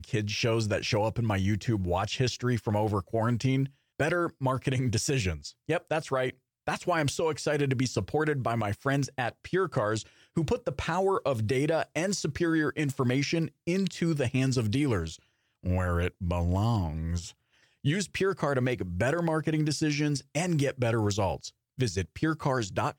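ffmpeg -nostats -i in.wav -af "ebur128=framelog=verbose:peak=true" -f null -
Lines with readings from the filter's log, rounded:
Integrated loudness:
  I:         -29.2 LUFS
  Threshold: -39.3 LUFS
Loudness range:
  LRA:         1.7 LU
  Threshold: -49.3 LUFS
  LRA low:   -30.1 LUFS
  LRA high:  -28.5 LUFS
True peak:
  Peak:      -16.6 dBFS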